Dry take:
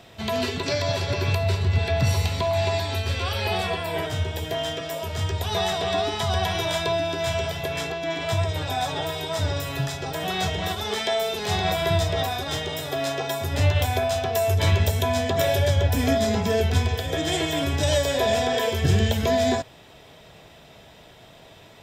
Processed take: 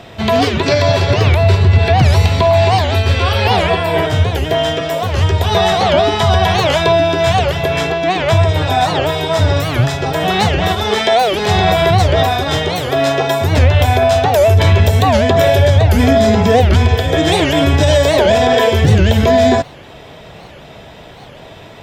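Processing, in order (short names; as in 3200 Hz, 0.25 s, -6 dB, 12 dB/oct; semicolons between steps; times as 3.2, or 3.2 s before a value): high shelf 4400 Hz -10 dB; maximiser +14.5 dB; record warp 78 rpm, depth 250 cents; gain -1 dB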